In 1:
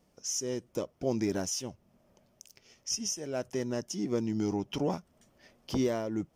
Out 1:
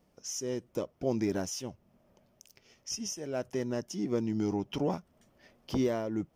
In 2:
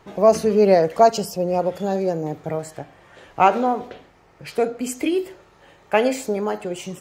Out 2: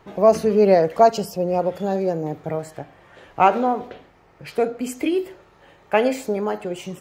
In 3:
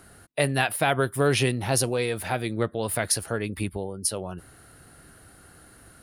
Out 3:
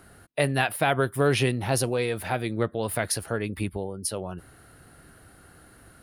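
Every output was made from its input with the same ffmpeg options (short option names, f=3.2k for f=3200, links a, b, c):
-af "equalizer=f=7.5k:t=o:w=1.6:g=-5"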